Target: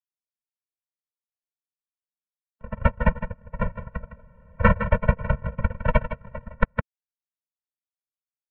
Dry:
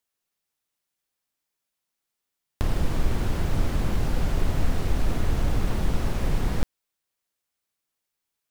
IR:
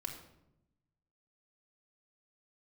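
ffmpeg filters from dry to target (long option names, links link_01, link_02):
-filter_complex "[0:a]asettb=1/sr,asplit=3[link_01][link_02][link_03];[link_01]atrim=end=4.134[link_04];[link_02]atrim=start=4.13:end=4.57,asetpts=PTS-STARTPTS,afade=type=in:duration=0.004:curve=qsin,afade=type=out:start_time=0.436:duration=0.004:curve=qsin,highpass=frequency=57:width=0.5412,highpass=frequency=57:width=1.3066[link_05];[link_03]atrim=start=4.566[link_06];[link_04][link_05]acrossfade=duration=0.004:curve1=hsin:curve2=qsin[link_07];[link_07][link_06]acrossfade=duration=0.004:curve1=qsin:curve2=hsin,asettb=1/sr,asplit=3[link_08][link_09][link_10];[link_08]atrim=end=5.614[link_11];[link_09]atrim=start=5.61:end=6.34,asetpts=PTS-STARTPTS,afade=type=in:duration=0.004:curve=qsin,afade=type=out:start_time=0.726:duration=0.004:curve=qsin,aemphasis=mode=production:type=50kf[link_12];[link_10]atrim=start=6.336[link_13];[link_11][link_12]acrossfade=duration=0.004:curve1=hsin:curve2=qsin[link_14];[link_14][link_13]acrossfade=duration=0.004:curve1=qsin:curve2=hsin,agate=range=-46dB:threshold=-16dB:ratio=16:detection=peak,lowshelf=frequency=260:gain=9,acrossover=split=1000[link_15][link_16];[link_16]acontrast=84[link_17];[link_15][link_17]amix=inputs=2:normalize=0,asplit=3[link_18][link_19][link_20];[link_18]afade=type=out:start_time=2.98:duration=0.02[link_21];[link_19]aeval=exprs='(tanh(6.31*val(0)+0.55)-tanh(0.55))/6.31':channel_layout=same,afade=type=in:start_time=2.98:duration=0.02,afade=type=out:start_time=3.61:duration=0.02[link_22];[link_20]afade=type=in:start_time=3.61:duration=0.02[link_23];[link_21][link_22][link_23]amix=inputs=3:normalize=0,adynamicsmooth=sensitivity=8:basefreq=1300,aeval=exprs='abs(val(0))':channel_layout=same,asplit=2[link_24][link_25];[link_25]aecho=0:1:160:0.282[link_26];[link_24][link_26]amix=inputs=2:normalize=0,highpass=frequency=230:width_type=q:width=0.5412,highpass=frequency=230:width_type=q:width=1.307,lowpass=frequency=2600:width_type=q:width=0.5176,lowpass=frequency=2600:width_type=q:width=0.7071,lowpass=frequency=2600:width_type=q:width=1.932,afreqshift=-240,alimiter=level_in=27.5dB:limit=-1dB:release=50:level=0:latency=1,afftfilt=real='re*eq(mod(floor(b*sr/1024/220),2),0)':imag='im*eq(mod(floor(b*sr/1024/220),2),0)':win_size=1024:overlap=0.75"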